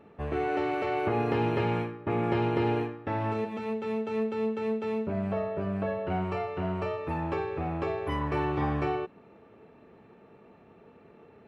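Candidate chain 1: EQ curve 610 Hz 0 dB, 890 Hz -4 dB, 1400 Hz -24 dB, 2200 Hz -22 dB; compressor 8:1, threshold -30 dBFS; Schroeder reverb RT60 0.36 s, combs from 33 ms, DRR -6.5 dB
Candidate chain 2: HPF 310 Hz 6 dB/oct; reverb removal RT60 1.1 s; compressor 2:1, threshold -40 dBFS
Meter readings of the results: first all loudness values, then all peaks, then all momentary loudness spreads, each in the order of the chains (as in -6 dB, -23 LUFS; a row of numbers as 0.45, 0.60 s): -28.0, -40.5 LUFS; -15.0, -24.5 dBFS; 5, 5 LU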